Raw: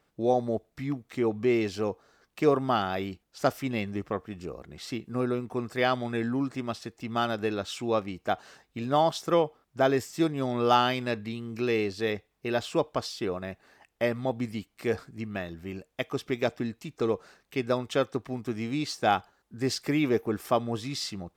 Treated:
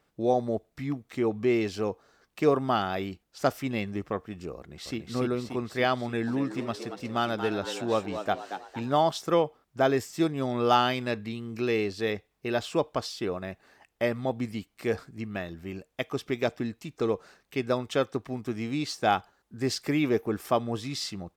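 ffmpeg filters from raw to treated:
ffmpeg -i in.wav -filter_complex "[0:a]asplit=2[link_01][link_02];[link_02]afade=type=in:start_time=4.56:duration=0.01,afade=type=out:start_time=4.98:duration=0.01,aecho=0:1:290|580|870|1160|1450|1740|2030|2320|2610|2900:0.707946|0.460165|0.299107|0.19442|0.126373|0.0821423|0.0533925|0.0347051|0.0225583|0.0146629[link_03];[link_01][link_03]amix=inputs=2:normalize=0,asettb=1/sr,asplit=3[link_04][link_05][link_06];[link_04]atrim=end=6.044[link_07];[link_05]atrim=start=6.04:end=8.94,asetpts=PTS-STARTPTS,afade=type=in:duration=0.004:curve=qsin,afade=type=out:start_time=2.896:duration=0.004:curve=qsin,asplit=6[link_08][link_09][link_10][link_11][link_12][link_13];[link_09]adelay=231,afreqshift=88,volume=-9dB[link_14];[link_10]adelay=462,afreqshift=176,volume=-15.9dB[link_15];[link_11]adelay=693,afreqshift=264,volume=-22.9dB[link_16];[link_12]adelay=924,afreqshift=352,volume=-29.8dB[link_17];[link_13]adelay=1155,afreqshift=440,volume=-36.7dB[link_18];[link_08][link_14][link_15][link_16][link_17][link_18]amix=inputs=6:normalize=0,atrim=end_sample=127890[link_19];[link_06]atrim=start=8.936[link_20];[link_07][link_19]acrossfade=duration=0.004:curve1=hsin:curve2=qsin[link_21];[link_21][link_20]acrossfade=duration=0.004:curve1=qsin:curve2=hsin" out.wav

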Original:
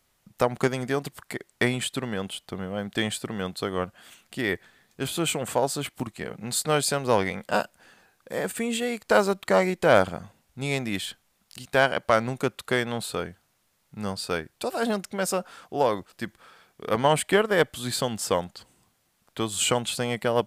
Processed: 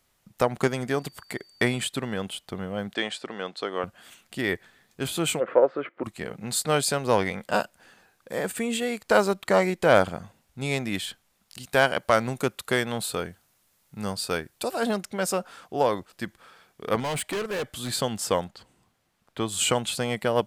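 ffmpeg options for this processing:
ffmpeg -i in.wav -filter_complex "[0:a]asettb=1/sr,asplit=3[link_01][link_02][link_03];[link_01]atrim=end=0.984[link_04];[link_02]atrim=start=0.98:end=1.87,asetpts=PTS-STARTPTS,afade=type=in:duration=0.004:curve=qsin,afade=type=out:start_time=0.886:duration=0.004:curve=qsin,aeval=exprs='val(0)+0.00178*sin(2*PI*4600*n/s)':channel_layout=same[link_05];[link_03]atrim=start=1.866[link_06];[link_04][link_05]acrossfade=duration=0.004:curve1=hsin:curve2=qsin[link_07];[link_07][link_06]acrossfade=duration=0.004:curve1=qsin:curve2=hsin,asettb=1/sr,asplit=3[link_08][link_09][link_10];[link_08]atrim=end=2.944[link_11];[link_09]atrim=start=2.94:end=3.84,asetpts=PTS-STARTPTS,afade=type=in:duration=0.004:curve=qsin,afade=type=out:start_time=0.896:duration=0.004:curve=qsin,highpass=330,lowpass=5400[link_12];[link_10]atrim=start=3.836[link_13];[link_11][link_12]acrossfade=duration=0.004:curve1=hsin:curve2=qsin[link_14];[link_14][link_13]acrossfade=duration=0.004:curve1=qsin:curve2=hsin,asplit=3[link_15][link_16][link_17];[link_15]afade=type=out:start_time=5.39:duration=0.02[link_18];[link_16]highpass=310,equalizer=frequency=350:width_type=q:width=4:gain=8,equalizer=frequency=520:width_type=q:width=4:gain=10,equalizer=frequency=810:width_type=q:width=4:gain=-7,equalizer=frequency=1300:width_type=q:width=4:gain=6,equalizer=frequency=2000:width_type=q:width=4:gain=3,lowpass=frequency=2100:width=0.5412,lowpass=frequency=2100:width=1.3066,afade=type=in:start_time=5.39:duration=0.02,afade=type=out:start_time=6.03:duration=0.02[link_19];[link_17]afade=type=in:start_time=6.03:duration=0.02[link_20];[link_18][link_19][link_20]amix=inputs=3:normalize=0,asettb=1/sr,asplit=3[link_21][link_22][link_23];[link_21]atrim=end=11.634[link_24];[link_22]atrim=start=11.63:end=14.71,asetpts=PTS-STARTPTS,afade=type=in:duration=0.004:curve=qsin,afade=type=out:start_time=3.076:duration=0.004:curve=qsin,highshelf=frequency=7400:gain=7[link_25];[link_23]atrim=start=14.706[link_26];[link_24][link_25]acrossfade=duration=0.004:curve1=hsin:curve2=qsin[link_27];[link_27][link_26]acrossfade=duration=0.004:curve1=qsin:curve2=hsin,asettb=1/sr,asplit=3[link_28][link_29][link_30];[link_28]atrim=end=17.004[link_31];[link_29]atrim=start=17:end=17.9,asetpts=PTS-STARTPTS,afade=type=in:duration=0.004:curve=qsin,afade=type=out:start_time=0.896:duration=0.004:curve=qsin,volume=26.5dB,asoftclip=hard,volume=-26.5dB[link_32];[link_30]atrim=start=17.896[link_33];[link_31][link_32]acrossfade=duration=0.004:curve1=hsin:curve2=qsin[link_34];[link_34][link_33]acrossfade=duration=0.004:curve1=qsin:curve2=hsin,asettb=1/sr,asplit=3[link_35][link_36][link_37];[link_35]atrim=end=18.484[link_38];[link_36]atrim=start=18.48:end=19.48,asetpts=PTS-STARTPTS,afade=type=in:duration=0.004:curve=qsin,afade=type=out:start_time=0.996:duration=0.004:curve=qsin,highshelf=frequency=5100:gain=-9[link_39];[link_37]atrim=start=19.476[link_40];[link_38][link_39]acrossfade=duration=0.004:curve1=hsin:curve2=qsin[link_41];[link_41][link_40]acrossfade=duration=0.004:curve1=qsin:curve2=hsin" out.wav

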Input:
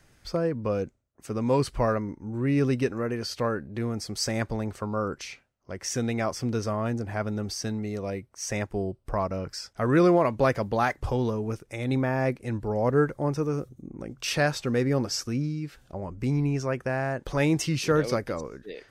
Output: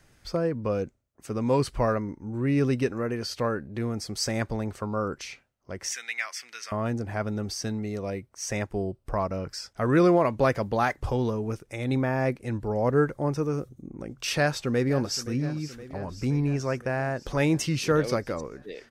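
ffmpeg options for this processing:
ffmpeg -i in.wav -filter_complex "[0:a]asettb=1/sr,asplit=3[link_01][link_02][link_03];[link_01]atrim=end=5.924[link_04];[link_02]atrim=start=5.92:end=6.72,asetpts=PTS-STARTPTS,afade=type=in:duration=0.004:curve=qsin,afade=type=out:start_time=0.796:duration=0.004:curve=qsin,highpass=frequency=2000:width_type=q:width=2.6[link_05];[link_03]atrim=start=6.716[link_06];[link_04][link_05]acrossfade=duration=0.004:curve1=hsin:curve2=qsin[link_07];[link_07][link_06]acrossfade=duration=0.004:curve1=qsin:curve2=hsin,asplit=2[link_08][link_09];[link_09]afade=type=in:start_time=14.35:duration=0.01,afade=type=out:start_time=15.31:duration=0.01,aecho=0:1:520|1040|1560|2080|2600|3120|3640|4160:0.16788|0.117516|0.0822614|0.057583|0.0403081|0.0282157|0.019751|0.0138257[link_10];[link_08][link_10]amix=inputs=2:normalize=0" out.wav

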